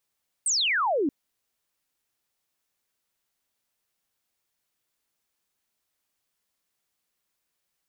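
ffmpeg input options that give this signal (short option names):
-f lavfi -i "aevalsrc='0.0841*clip(t/0.002,0,1)*clip((0.63-t)/0.002,0,1)*sin(2*PI*8900*0.63/log(260/8900)*(exp(log(260/8900)*t/0.63)-1))':d=0.63:s=44100"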